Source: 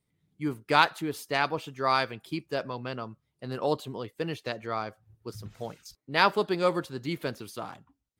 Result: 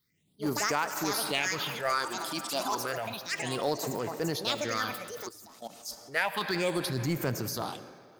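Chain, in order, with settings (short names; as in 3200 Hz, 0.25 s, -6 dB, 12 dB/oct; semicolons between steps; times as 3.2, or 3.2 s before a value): tilt +2.5 dB/oct; echoes that change speed 0.105 s, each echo +6 st, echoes 3, each echo -6 dB; phaser stages 6, 0.31 Hz, lowest notch 110–3600 Hz; on a send at -15.5 dB: reverb RT60 3.2 s, pre-delay 40 ms; 5.28–5.85 on the sum: level quantiser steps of 20 dB; 6.86–7.62 bell 120 Hz +11.5 dB 1.3 oct; in parallel at -11.5 dB: sample gate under -28 dBFS; on the sum: transient shaper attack -7 dB, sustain +4 dB; compressor 16:1, threshold -30 dBFS, peak gain reduction 15 dB; gain +5.5 dB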